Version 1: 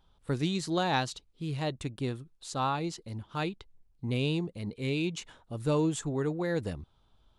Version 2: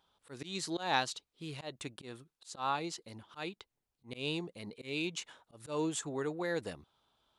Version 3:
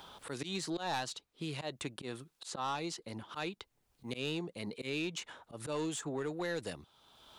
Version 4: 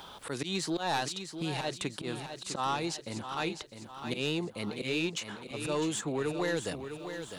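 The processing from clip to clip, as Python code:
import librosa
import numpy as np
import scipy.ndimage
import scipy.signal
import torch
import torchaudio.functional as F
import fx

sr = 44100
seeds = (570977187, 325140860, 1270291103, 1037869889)

y1 = fx.highpass(x, sr, hz=550.0, slope=6)
y1 = fx.auto_swell(y1, sr, attack_ms=148.0)
y2 = 10.0 ** (-28.5 / 20.0) * np.tanh(y1 / 10.0 ** (-28.5 / 20.0))
y2 = fx.band_squash(y2, sr, depth_pct=70)
y2 = y2 * 10.0 ** (1.0 / 20.0)
y3 = fx.echo_feedback(y2, sr, ms=654, feedback_pct=47, wet_db=-9)
y3 = y3 * 10.0 ** (5.0 / 20.0)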